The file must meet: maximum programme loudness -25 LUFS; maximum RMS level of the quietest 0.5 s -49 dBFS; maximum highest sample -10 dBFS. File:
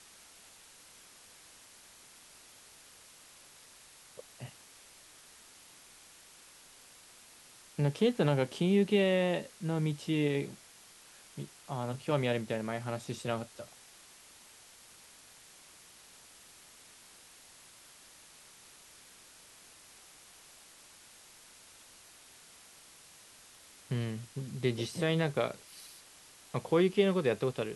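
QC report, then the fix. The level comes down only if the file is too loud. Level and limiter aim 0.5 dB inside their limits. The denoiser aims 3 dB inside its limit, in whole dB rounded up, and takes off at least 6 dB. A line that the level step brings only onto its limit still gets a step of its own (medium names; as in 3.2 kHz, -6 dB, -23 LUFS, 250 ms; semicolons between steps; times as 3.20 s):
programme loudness -32.0 LUFS: pass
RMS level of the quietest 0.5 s -57 dBFS: pass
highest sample -14.0 dBFS: pass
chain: none needed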